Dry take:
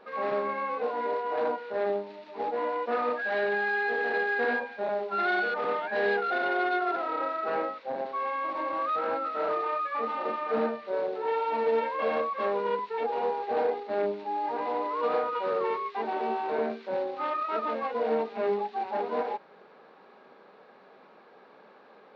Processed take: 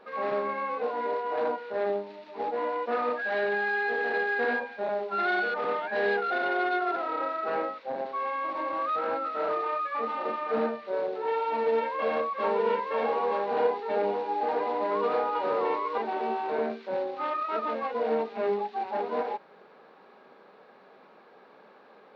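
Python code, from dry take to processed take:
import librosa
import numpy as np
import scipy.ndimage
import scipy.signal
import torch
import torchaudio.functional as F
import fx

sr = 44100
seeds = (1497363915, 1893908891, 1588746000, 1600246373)

y = fx.echo_single(x, sr, ms=918, db=-3.0, at=(11.51, 15.98))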